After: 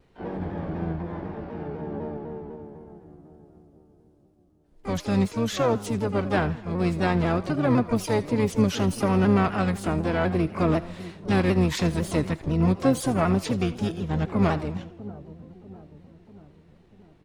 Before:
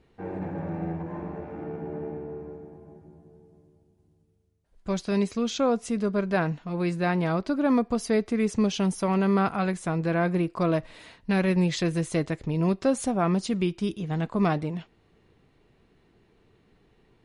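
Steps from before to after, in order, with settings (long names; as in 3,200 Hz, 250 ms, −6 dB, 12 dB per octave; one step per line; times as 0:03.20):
echo with a time of its own for lows and highs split 650 Hz, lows 643 ms, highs 82 ms, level −16 dB
pitch-shifted copies added −12 semitones −5 dB, +5 semitones −13 dB, +12 semitones −12 dB
pitch modulation by a square or saw wave saw down 4 Hz, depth 100 cents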